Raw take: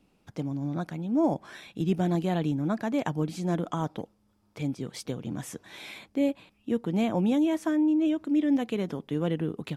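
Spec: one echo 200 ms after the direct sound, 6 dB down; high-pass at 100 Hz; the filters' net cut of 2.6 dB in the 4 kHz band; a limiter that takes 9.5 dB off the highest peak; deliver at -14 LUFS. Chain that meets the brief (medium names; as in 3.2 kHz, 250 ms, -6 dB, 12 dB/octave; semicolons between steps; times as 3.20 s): high-pass 100 Hz; peaking EQ 4 kHz -3.5 dB; peak limiter -25 dBFS; delay 200 ms -6 dB; trim +19 dB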